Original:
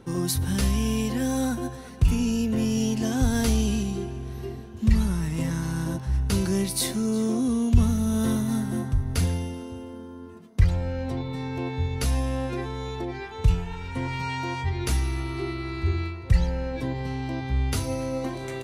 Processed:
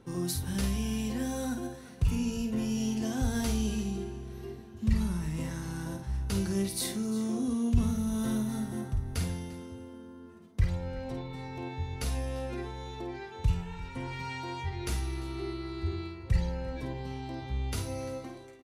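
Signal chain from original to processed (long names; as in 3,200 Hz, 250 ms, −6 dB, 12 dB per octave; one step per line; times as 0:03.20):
fade-out on the ending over 0.58 s
multi-tap delay 51/346 ms −6.5/−18.5 dB
level −7.5 dB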